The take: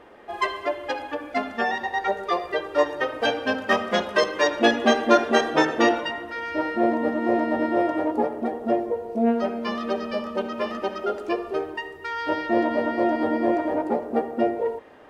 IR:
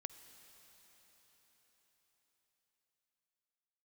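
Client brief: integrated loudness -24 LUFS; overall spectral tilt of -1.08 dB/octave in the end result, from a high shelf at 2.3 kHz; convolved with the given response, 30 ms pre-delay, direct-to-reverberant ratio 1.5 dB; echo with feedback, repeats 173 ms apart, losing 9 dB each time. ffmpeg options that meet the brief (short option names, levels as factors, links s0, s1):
-filter_complex "[0:a]highshelf=f=2300:g=8,aecho=1:1:173|346|519|692:0.355|0.124|0.0435|0.0152,asplit=2[s0][s1];[1:a]atrim=start_sample=2205,adelay=30[s2];[s1][s2]afir=irnorm=-1:irlink=0,volume=1.33[s3];[s0][s3]amix=inputs=2:normalize=0,volume=0.631"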